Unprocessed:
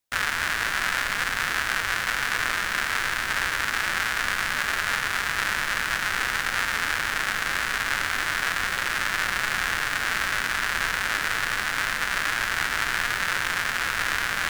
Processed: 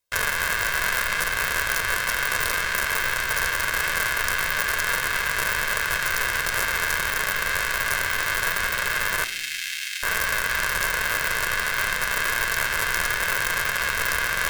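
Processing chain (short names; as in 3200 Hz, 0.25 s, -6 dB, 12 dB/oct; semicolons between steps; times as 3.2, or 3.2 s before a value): 9.24–10.03 inverse Chebyshev high-pass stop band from 670 Hz, stop band 60 dB; wrapped overs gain 11.5 dB; reverb RT60 1.1 s, pre-delay 4 ms, DRR 13 dB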